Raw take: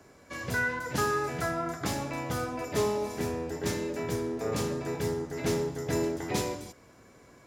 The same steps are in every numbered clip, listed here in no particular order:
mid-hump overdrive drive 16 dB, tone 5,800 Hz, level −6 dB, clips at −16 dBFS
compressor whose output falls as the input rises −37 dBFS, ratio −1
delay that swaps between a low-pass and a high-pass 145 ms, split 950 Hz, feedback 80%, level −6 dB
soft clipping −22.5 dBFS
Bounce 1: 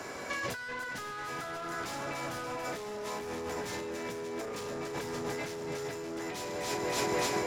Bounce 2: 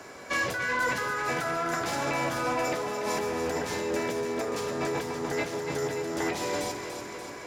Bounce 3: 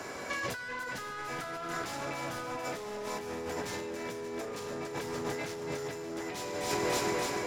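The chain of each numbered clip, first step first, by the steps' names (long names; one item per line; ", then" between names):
delay that swaps between a low-pass and a high-pass, then mid-hump overdrive, then soft clipping, then compressor whose output falls as the input rises
soft clipping, then compressor whose output falls as the input rises, then delay that swaps between a low-pass and a high-pass, then mid-hump overdrive
mid-hump overdrive, then soft clipping, then delay that swaps between a low-pass and a high-pass, then compressor whose output falls as the input rises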